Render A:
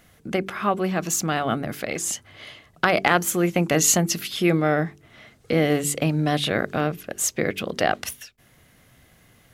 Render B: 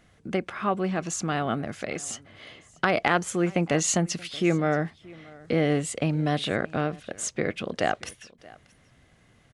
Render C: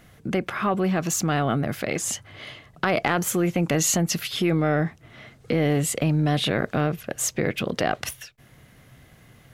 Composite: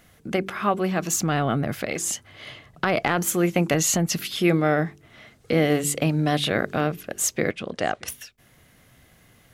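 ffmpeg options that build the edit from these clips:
-filter_complex "[2:a]asplit=3[a][b][c];[0:a]asplit=5[d][e][f][g][h];[d]atrim=end=1.172[i];[a]atrim=start=1.168:end=1.862[j];[e]atrim=start=1.858:end=2.462[k];[b]atrim=start=2.458:end=3.232[l];[f]atrim=start=3.228:end=3.742[m];[c]atrim=start=3.738:end=4.192[n];[g]atrim=start=4.188:end=7.512[o];[1:a]atrim=start=7.508:end=8.082[p];[h]atrim=start=8.078[q];[i][j]acrossfade=d=0.004:c1=hsin:c2=hsin[r];[r][k]acrossfade=d=0.004:c1=hsin:c2=hsin[s];[s][l]acrossfade=d=0.004:c1=hsin:c2=hsin[t];[t][m]acrossfade=d=0.004:c1=hsin:c2=hsin[u];[u][n]acrossfade=d=0.004:c1=hsin:c2=hsin[v];[v][o]acrossfade=d=0.004:c1=hsin:c2=hsin[w];[w][p]acrossfade=d=0.004:c1=hsin:c2=hsin[x];[x][q]acrossfade=d=0.004:c1=hsin:c2=hsin"

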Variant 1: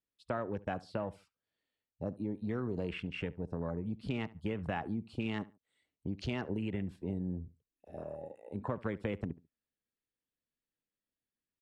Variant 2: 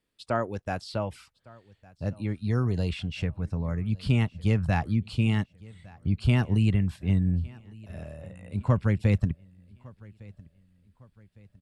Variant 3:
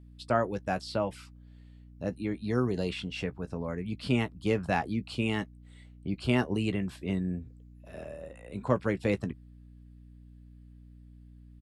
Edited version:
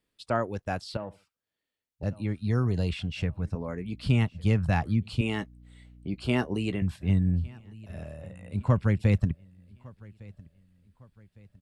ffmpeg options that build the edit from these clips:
-filter_complex "[2:a]asplit=2[a][b];[1:a]asplit=4[c][d][e][f];[c]atrim=end=0.972[g];[0:a]atrim=start=0.968:end=2.032[h];[d]atrim=start=2.028:end=3.552[i];[a]atrim=start=3.548:end=4.062[j];[e]atrim=start=4.058:end=5.212[k];[b]atrim=start=5.208:end=6.822[l];[f]atrim=start=6.818[m];[g][h]acrossfade=d=0.004:c1=hsin:c2=hsin[n];[n][i]acrossfade=d=0.004:c1=hsin:c2=hsin[o];[o][j]acrossfade=d=0.004:c1=hsin:c2=hsin[p];[p][k]acrossfade=d=0.004:c1=hsin:c2=hsin[q];[q][l]acrossfade=d=0.004:c1=hsin:c2=hsin[r];[r][m]acrossfade=d=0.004:c1=hsin:c2=hsin"

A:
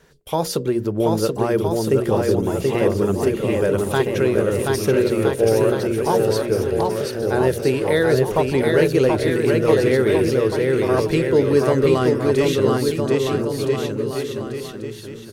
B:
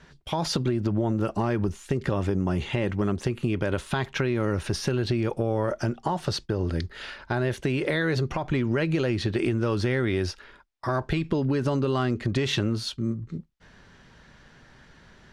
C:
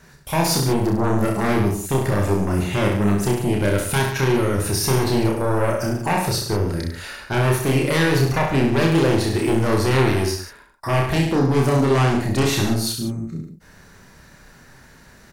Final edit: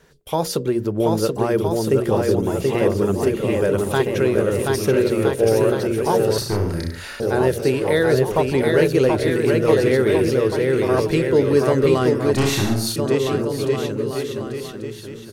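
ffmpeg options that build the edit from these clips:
-filter_complex "[2:a]asplit=2[a][b];[0:a]asplit=3[c][d][e];[c]atrim=end=6.382[f];[a]atrim=start=6.378:end=7.202[g];[d]atrim=start=7.198:end=12.332[h];[b]atrim=start=12.328:end=12.962[i];[e]atrim=start=12.958[j];[f][g]acrossfade=d=0.004:c1=hsin:c2=hsin[k];[k][h]acrossfade=d=0.004:c1=hsin:c2=hsin[l];[l][i]acrossfade=d=0.004:c1=hsin:c2=hsin[m];[m][j]acrossfade=d=0.004:c1=hsin:c2=hsin"

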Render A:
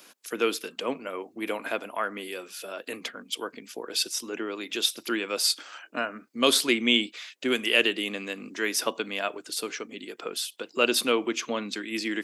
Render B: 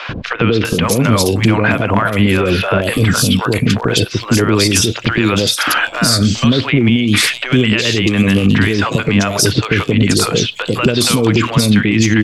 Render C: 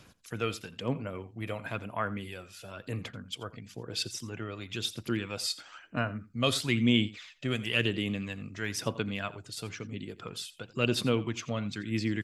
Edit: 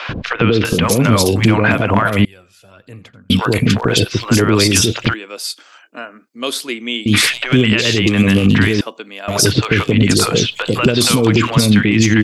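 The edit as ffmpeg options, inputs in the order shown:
-filter_complex "[0:a]asplit=2[a][b];[1:a]asplit=4[c][d][e][f];[c]atrim=end=2.252[g];[2:a]atrim=start=2.248:end=3.302[h];[d]atrim=start=3.298:end=5.142[i];[a]atrim=start=5.138:end=7.062[j];[e]atrim=start=7.058:end=8.812[k];[b]atrim=start=8.808:end=9.282[l];[f]atrim=start=9.278[m];[g][h]acrossfade=d=0.004:c1=hsin:c2=hsin[n];[n][i]acrossfade=d=0.004:c1=hsin:c2=hsin[o];[o][j]acrossfade=d=0.004:c1=hsin:c2=hsin[p];[p][k]acrossfade=d=0.004:c1=hsin:c2=hsin[q];[q][l]acrossfade=d=0.004:c1=hsin:c2=hsin[r];[r][m]acrossfade=d=0.004:c1=hsin:c2=hsin"

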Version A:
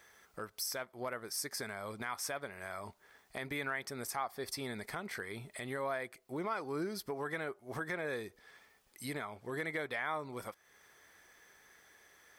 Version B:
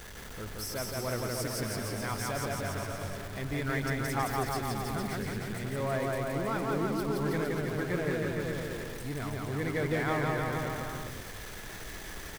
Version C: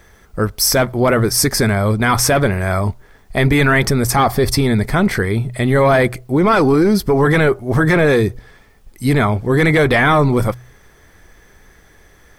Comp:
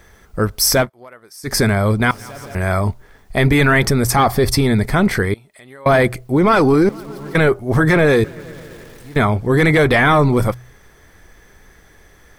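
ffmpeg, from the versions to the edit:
-filter_complex "[0:a]asplit=2[a][b];[1:a]asplit=3[c][d][e];[2:a]asplit=6[f][g][h][i][j][k];[f]atrim=end=0.9[l];[a]atrim=start=0.8:end=1.53[m];[g]atrim=start=1.43:end=2.112[n];[c]atrim=start=2.108:end=2.552[o];[h]atrim=start=2.548:end=5.342[p];[b]atrim=start=5.338:end=5.862[q];[i]atrim=start=5.858:end=6.892[r];[d]atrim=start=6.888:end=7.352[s];[j]atrim=start=7.348:end=8.242[t];[e]atrim=start=8.238:end=9.162[u];[k]atrim=start=9.158[v];[l][m]acrossfade=d=0.1:c1=tri:c2=tri[w];[w][n]acrossfade=d=0.1:c1=tri:c2=tri[x];[x][o]acrossfade=d=0.004:c1=hsin:c2=hsin[y];[y][p]acrossfade=d=0.004:c1=hsin:c2=hsin[z];[z][q]acrossfade=d=0.004:c1=hsin:c2=hsin[aa];[aa][r]acrossfade=d=0.004:c1=hsin:c2=hsin[ab];[ab][s]acrossfade=d=0.004:c1=hsin:c2=hsin[ac];[ac][t]acrossfade=d=0.004:c1=hsin:c2=hsin[ad];[ad][u]acrossfade=d=0.004:c1=hsin:c2=hsin[ae];[ae][v]acrossfade=d=0.004:c1=hsin:c2=hsin"

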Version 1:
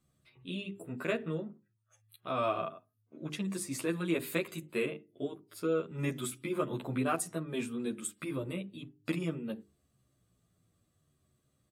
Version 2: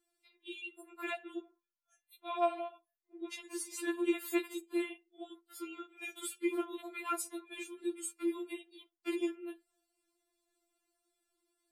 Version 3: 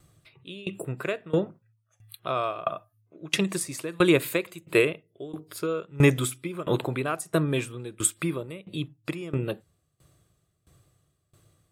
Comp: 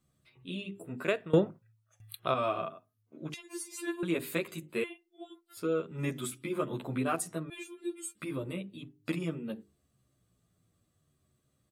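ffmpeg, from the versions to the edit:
-filter_complex "[1:a]asplit=3[a][b][c];[0:a]asplit=5[d][e][f][g][h];[d]atrim=end=1.082[i];[2:a]atrim=start=1.078:end=2.342[j];[e]atrim=start=2.338:end=3.342[k];[a]atrim=start=3.338:end=4.032[l];[f]atrim=start=4.028:end=4.842[m];[b]atrim=start=4.838:end=5.572[n];[g]atrim=start=5.568:end=7.502[o];[c]atrim=start=7.498:end=8.152[p];[h]atrim=start=8.148[q];[i][j]acrossfade=d=0.004:c1=hsin:c2=hsin[r];[r][k]acrossfade=d=0.004:c1=hsin:c2=hsin[s];[s][l]acrossfade=d=0.004:c1=hsin:c2=hsin[t];[t][m]acrossfade=d=0.004:c1=hsin:c2=hsin[u];[u][n]acrossfade=d=0.004:c1=hsin:c2=hsin[v];[v][o]acrossfade=d=0.004:c1=hsin:c2=hsin[w];[w][p]acrossfade=d=0.004:c1=hsin:c2=hsin[x];[x][q]acrossfade=d=0.004:c1=hsin:c2=hsin"

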